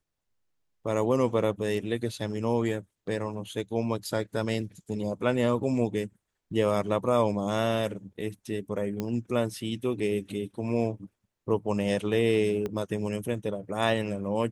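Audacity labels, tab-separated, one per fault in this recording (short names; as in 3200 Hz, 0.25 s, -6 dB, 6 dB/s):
9.000000	9.000000	pop -17 dBFS
12.660000	12.660000	pop -20 dBFS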